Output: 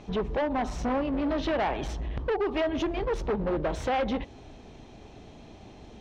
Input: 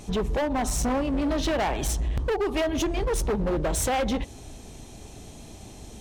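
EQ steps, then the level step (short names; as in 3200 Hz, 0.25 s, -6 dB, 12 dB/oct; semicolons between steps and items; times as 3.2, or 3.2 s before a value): air absorption 230 m; low shelf 170 Hz -7.5 dB; 0.0 dB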